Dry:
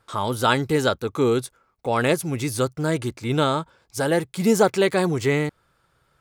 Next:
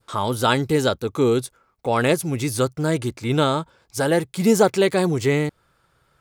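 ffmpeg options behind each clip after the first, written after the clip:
ffmpeg -i in.wav -af "adynamicequalizer=threshold=0.0158:dfrequency=1400:dqfactor=0.82:tfrequency=1400:tqfactor=0.82:attack=5:release=100:ratio=0.375:range=2.5:mode=cutabove:tftype=bell,volume=2dB" out.wav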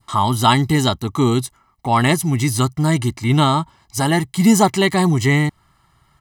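ffmpeg -i in.wav -af "aecho=1:1:1:0.91,volume=3dB" out.wav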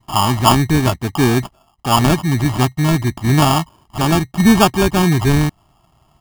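ffmpeg -i in.wav -filter_complex "[0:a]acrossover=split=7600[link_01][link_02];[link_02]acompressor=threshold=-36dB:ratio=4:attack=1:release=60[link_03];[link_01][link_03]amix=inputs=2:normalize=0,acrusher=samples=22:mix=1:aa=0.000001,volume=2dB" out.wav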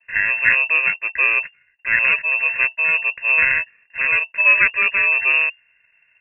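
ffmpeg -i in.wav -af "lowpass=frequency=2400:width_type=q:width=0.5098,lowpass=frequency=2400:width_type=q:width=0.6013,lowpass=frequency=2400:width_type=q:width=0.9,lowpass=frequency=2400:width_type=q:width=2.563,afreqshift=-2800,volume=-3.5dB" out.wav

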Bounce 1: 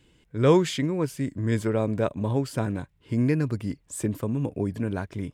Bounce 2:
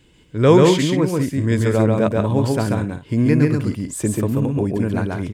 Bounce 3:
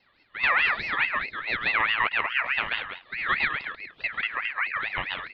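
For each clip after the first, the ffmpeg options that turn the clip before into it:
ffmpeg -i in.wav -af "aecho=1:1:137|192.4:0.794|0.251,volume=6dB" out.wav
ffmpeg -i in.wav -af "highpass=frequency=350:width_type=q:width=0.5412,highpass=frequency=350:width_type=q:width=1.307,lowpass=frequency=2300:width_type=q:width=0.5176,lowpass=frequency=2300:width_type=q:width=0.7071,lowpass=frequency=2300:width_type=q:width=1.932,afreqshift=-98,alimiter=limit=-12dB:level=0:latency=1:release=284,aeval=exprs='val(0)*sin(2*PI*1900*n/s+1900*0.25/4.7*sin(2*PI*4.7*n/s))':channel_layout=same" out.wav

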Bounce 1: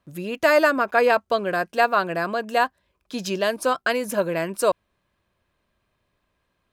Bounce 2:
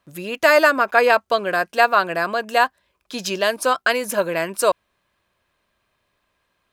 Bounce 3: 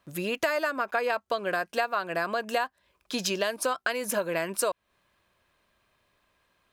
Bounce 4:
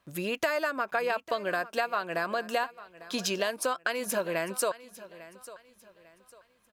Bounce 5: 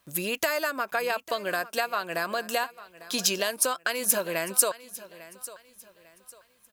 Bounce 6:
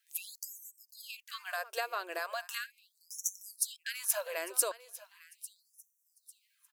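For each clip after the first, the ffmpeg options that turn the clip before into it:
ffmpeg -i in.wav -af "lowshelf=frequency=440:gain=-9,volume=5.5dB" out.wav
ffmpeg -i in.wav -af "acompressor=threshold=-25dB:ratio=6" out.wav
ffmpeg -i in.wav -af "aecho=1:1:849|1698|2547:0.133|0.044|0.0145,volume=-1.5dB" out.wav
ffmpeg -i in.wav -af "crystalizer=i=2.5:c=0" out.wav
ffmpeg -i in.wav -af "afftfilt=real='re*gte(b*sr/1024,280*pow(5600/280,0.5+0.5*sin(2*PI*0.38*pts/sr)))':imag='im*gte(b*sr/1024,280*pow(5600/280,0.5+0.5*sin(2*PI*0.38*pts/sr)))':win_size=1024:overlap=0.75,volume=-7.5dB" out.wav

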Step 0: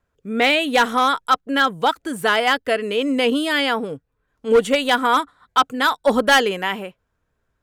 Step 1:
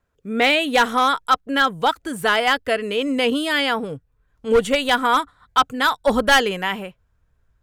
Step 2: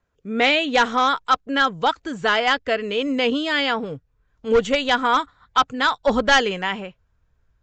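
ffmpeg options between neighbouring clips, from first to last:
ffmpeg -i in.wav -af "asubboost=boost=3.5:cutoff=140" out.wav
ffmpeg -i in.wav -af "volume=-1dB" -ar 16000 -c:a libvorbis -b:a 64k out.ogg

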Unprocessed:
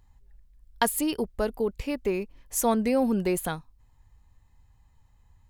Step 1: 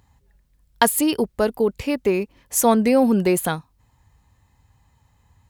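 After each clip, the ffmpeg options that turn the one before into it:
ffmpeg -i in.wav -af "highpass=81,volume=7.5dB" out.wav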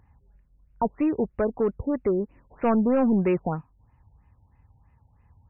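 ffmpeg -i in.wav -af "asoftclip=type=tanh:threshold=-14dB,lowshelf=frequency=200:gain=4.5,afftfilt=real='re*lt(b*sr/1024,920*pow(3000/920,0.5+0.5*sin(2*PI*3.1*pts/sr)))':imag='im*lt(b*sr/1024,920*pow(3000/920,0.5+0.5*sin(2*PI*3.1*pts/sr)))':win_size=1024:overlap=0.75,volume=-3dB" out.wav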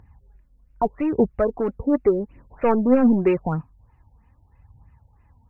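ffmpeg -i in.wav -af "aphaser=in_gain=1:out_gain=1:delay=4.5:decay=0.48:speed=0.83:type=triangular,volume=2.5dB" out.wav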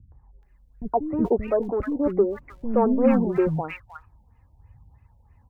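ffmpeg -i in.wav -filter_complex "[0:a]acrossover=split=270|1300[link_01][link_02][link_03];[link_02]adelay=120[link_04];[link_03]adelay=430[link_05];[link_01][link_04][link_05]amix=inputs=3:normalize=0" out.wav

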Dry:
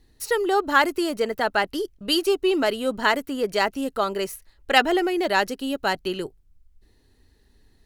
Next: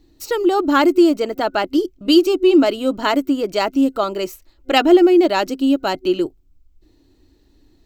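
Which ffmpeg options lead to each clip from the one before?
ffmpeg -i in.wav -af "superequalizer=6b=3.55:8b=1.41:11b=0.501:16b=0.282,volume=2.5dB" out.wav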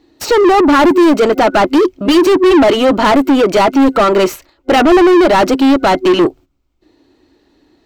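ffmpeg -i in.wav -filter_complex "[0:a]agate=range=-13dB:threshold=-43dB:ratio=16:detection=peak,asplit=2[link_01][link_02];[link_02]highpass=frequency=720:poles=1,volume=33dB,asoftclip=type=tanh:threshold=-1dB[link_03];[link_01][link_03]amix=inputs=2:normalize=0,lowpass=frequency=1500:poles=1,volume=-6dB" out.wav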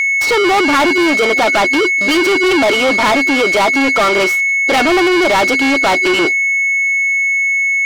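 ffmpeg -i in.wav -filter_complex "[0:a]aeval=exprs='val(0)+0.178*sin(2*PI*2200*n/s)':channel_layout=same,aeval=exprs='sgn(val(0))*max(abs(val(0))-0.00562,0)':channel_layout=same,asplit=2[link_01][link_02];[link_02]highpass=frequency=720:poles=1,volume=20dB,asoftclip=type=tanh:threshold=0dB[link_03];[link_01][link_03]amix=inputs=2:normalize=0,lowpass=frequency=6800:poles=1,volume=-6dB,volume=-6.5dB" out.wav

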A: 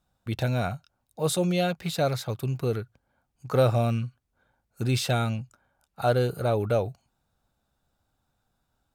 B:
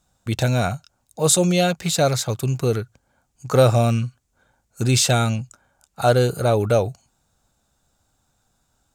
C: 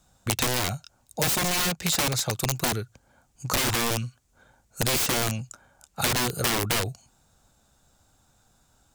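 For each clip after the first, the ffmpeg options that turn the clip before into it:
ffmpeg -i in.wav -af "equalizer=frequency=7100:width_type=o:width=0.81:gain=11.5,volume=6.5dB" out.wav
ffmpeg -i in.wav -filter_complex "[0:a]aeval=exprs='(mod(5.31*val(0)+1,2)-1)/5.31':channel_layout=same,acrossover=split=380|2600[link_01][link_02][link_03];[link_01]acompressor=threshold=-34dB:ratio=4[link_04];[link_02]acompressor=threshold=-35dB:ratio=4[link_05];[link_03]acompressor=threshold=-28dB:ratio=4[link_06];[link_04][link_05][link_06]amix=inputs=3:normalize=0,volume=4dB" out.wav

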